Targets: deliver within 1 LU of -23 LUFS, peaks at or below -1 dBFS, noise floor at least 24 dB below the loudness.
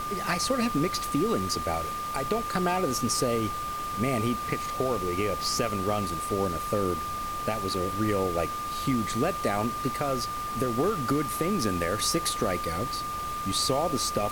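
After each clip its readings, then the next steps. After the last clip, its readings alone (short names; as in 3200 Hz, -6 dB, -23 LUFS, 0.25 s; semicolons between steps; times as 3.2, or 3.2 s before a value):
steady tone 1200 Hz; tone level -31 dBFS; noise floor -33 dBFS; noise floor target -52 dBFS; loudness -28.0 LUFS; peak -13.5 dBFS; loudness target -23.0 LUFS
-> notch 1200 Hz, Q 30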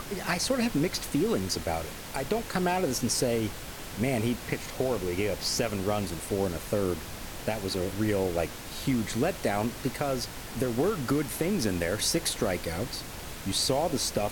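steady tone none; noise floor -41 dBFS; noise floor target -54 dBFS
-> noise print and reduce 13 dB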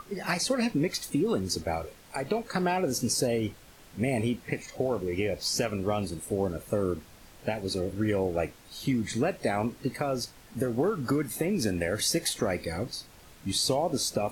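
noise floor -53 dBFS; noise floor target -54 dBFS
-> noise print and reduce 6 dB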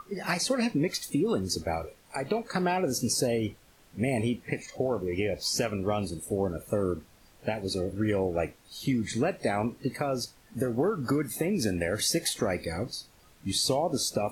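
noise floor -59 dBFS; loudness -29.5 LUFS; peak -14.5 dBFS; loudness target -23.0 LUFS
-> gain +6.5 dB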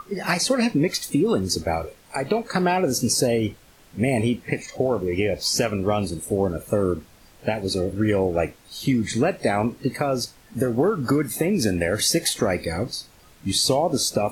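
loudness -23.0 LUFS; peak -8.0 dBFS; noise floor -52 dBFS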